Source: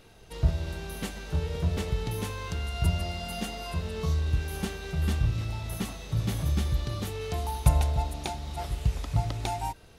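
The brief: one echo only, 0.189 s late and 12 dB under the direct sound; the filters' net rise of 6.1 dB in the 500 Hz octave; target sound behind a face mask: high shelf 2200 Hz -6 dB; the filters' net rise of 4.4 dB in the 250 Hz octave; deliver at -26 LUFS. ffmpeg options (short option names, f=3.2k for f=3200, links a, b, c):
-af "equalizer=f=250:t=o:g=5.5,equalizer=f=500:t=o:g=6.5,highshelf=f=2.2k:g=-6,aecho=1:1:189:0.251,volume=3dB"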